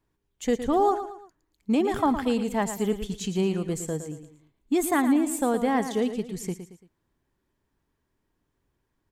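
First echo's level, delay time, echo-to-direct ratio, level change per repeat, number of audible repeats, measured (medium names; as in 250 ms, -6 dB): -10.5 dB, 113 ms, -10.0 dB, -8.0 dB, 3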